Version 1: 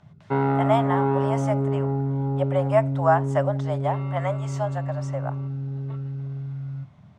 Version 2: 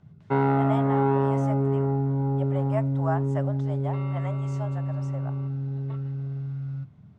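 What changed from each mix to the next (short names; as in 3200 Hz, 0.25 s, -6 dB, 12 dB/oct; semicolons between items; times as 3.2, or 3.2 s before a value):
speech -10.0 dB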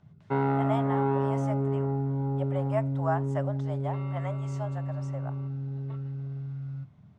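background -4.0 dB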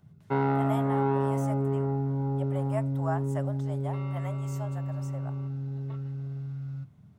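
speech -4.0 dB; master: remove air absorption 110 m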